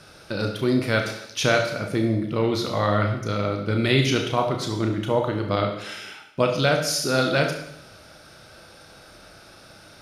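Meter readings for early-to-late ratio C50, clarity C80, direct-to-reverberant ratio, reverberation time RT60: 6.0 dB, 9.0 dB, 2.5 dB, 0.75 s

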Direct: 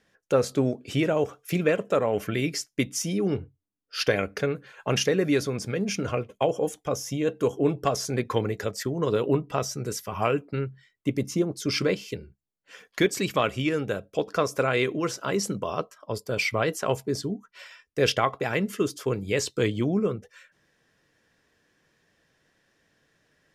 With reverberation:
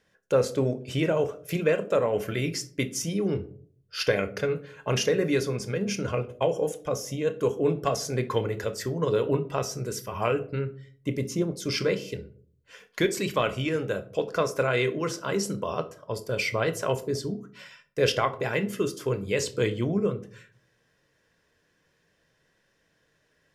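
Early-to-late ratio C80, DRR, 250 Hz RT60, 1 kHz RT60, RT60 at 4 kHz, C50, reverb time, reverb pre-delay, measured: 21.0 dB, 9.5 dB, 0.65 s, 0.45 s, 0.25 s, 16.0 dB, 0.55 s, 24 ms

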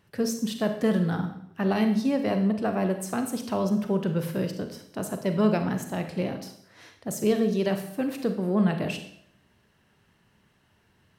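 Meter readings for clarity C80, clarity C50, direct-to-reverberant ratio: 11.5 dB, 8.5 dB, 6.5 dB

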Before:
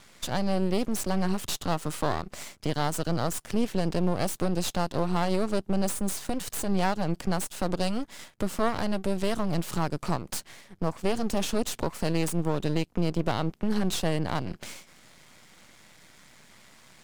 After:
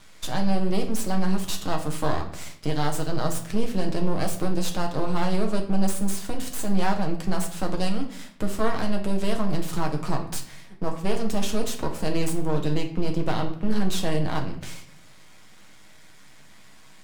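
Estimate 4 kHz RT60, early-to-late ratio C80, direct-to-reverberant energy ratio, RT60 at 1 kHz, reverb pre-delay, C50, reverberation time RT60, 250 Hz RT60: 0.50 s, 13.5 dB, 2.0 dB, 0.50 s, 6 ms, 10.0 dB, 0.55 s, 0.90 s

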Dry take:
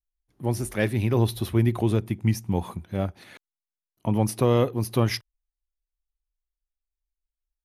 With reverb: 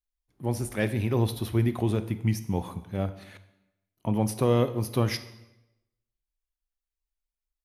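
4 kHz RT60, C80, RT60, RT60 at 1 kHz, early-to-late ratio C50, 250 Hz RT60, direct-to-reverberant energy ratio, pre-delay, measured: 0.80 s, 16.5 dB, 0.90 s, 0.85 s, 14.0 dB, 1.0 s, 11.5 dB, 22 ms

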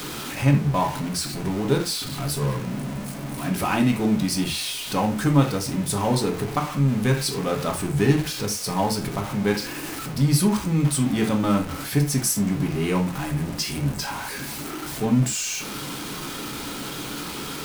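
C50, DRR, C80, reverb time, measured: 10.0 dB, 2.0 dB, 18.0 dB, not exponential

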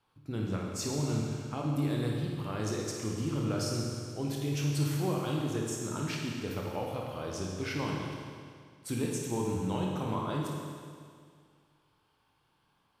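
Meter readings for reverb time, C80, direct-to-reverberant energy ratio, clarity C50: 2.1 s, 1.5 dB, -2.0 dB, 0.0 dB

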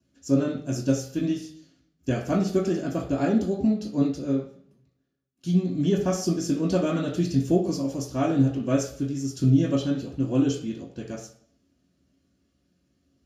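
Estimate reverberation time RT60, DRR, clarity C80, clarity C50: 0.55 s, -6.5 dB, 10.0 dB, 6.5 dB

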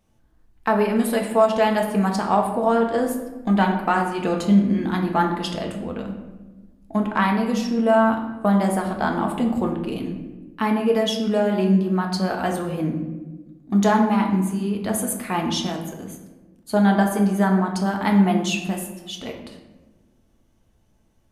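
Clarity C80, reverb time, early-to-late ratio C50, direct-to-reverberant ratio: 8.5 dB, 1.2 s, 6.0 dB, 1.5 dB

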